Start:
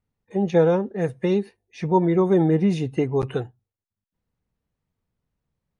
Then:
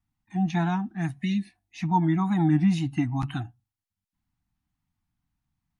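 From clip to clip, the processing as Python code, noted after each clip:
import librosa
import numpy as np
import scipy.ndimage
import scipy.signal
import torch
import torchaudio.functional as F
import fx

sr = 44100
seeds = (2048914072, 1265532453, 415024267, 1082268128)

y = fx.wow_flutter(x, sr, seeds[0], rate_hz=2.1, depth_cents=87.0)
y = fx.spec_repair(y, sr, seeds[1], start_s=1.21, length_s=0.35, low_hz=610.0, high_hz=1700.0, source='before')
y = scipy.signal.sosfilt(scipy.signal.ellip(3, 1.0, 40, [310.0, 720.0], 'bandstop', fs=sr, output='sos'), y)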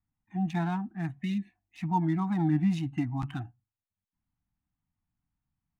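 y = fx.wiener(x, sr, points=9)
y = y * 10.0 ** (-4.5 / 20.0)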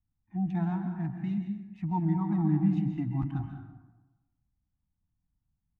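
y = fx.lowpass(x, sr, hz=1100.0, slope=6)
y = fx.low_shelf(y, sr, hz=130.0, db=11.0)
y = fx.rev_plate(y, sr, seeds[2], rt60_s=1.1, hf_ratio=0.55, predelay_ms=120, drr_db=5.0)
y = y * 10.0 ** (-4.0 / 20.0)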